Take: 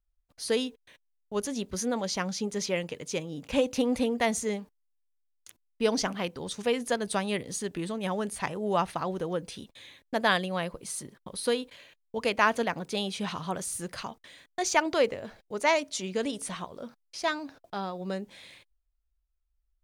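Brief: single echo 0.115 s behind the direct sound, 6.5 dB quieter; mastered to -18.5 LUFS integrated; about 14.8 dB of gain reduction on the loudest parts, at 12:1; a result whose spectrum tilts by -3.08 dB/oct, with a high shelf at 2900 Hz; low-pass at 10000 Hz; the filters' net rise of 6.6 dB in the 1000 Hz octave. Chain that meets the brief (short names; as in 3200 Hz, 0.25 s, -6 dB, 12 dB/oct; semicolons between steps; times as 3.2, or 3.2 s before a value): LPF 10000 Hz; bell 1000 Hz +7.5 dB; high shelf 2900 Hz +4 dB; compressor 12:1, threshold -27 dBFS; echo 0.115 s -6.5 dB; gain +14 dB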